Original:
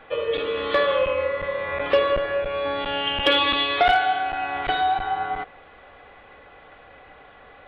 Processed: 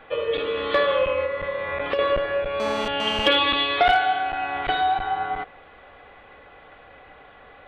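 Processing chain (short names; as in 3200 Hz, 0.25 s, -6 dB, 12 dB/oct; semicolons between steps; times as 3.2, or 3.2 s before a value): 1.24–1.99 compressor 10:1, threshold -22 dBFS, peak gain reduction 9 dB; 2.6–3.28 GSM buzz -30 dBFS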